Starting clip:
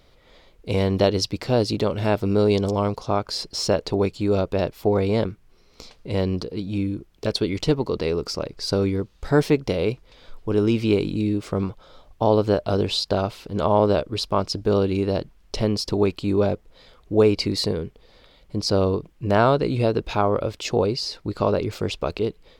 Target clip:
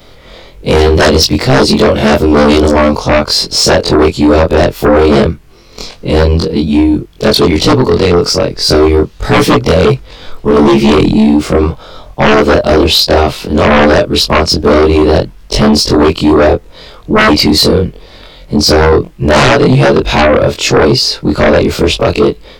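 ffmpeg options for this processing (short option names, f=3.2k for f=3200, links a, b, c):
-af "afftfilt=real='re':imag='-im':win_size=2048:overlap=0.75,aeval=exprs='0.398*sin(PI/2*5.01*val(0)/0.398)':c=same,volume=5.5dB"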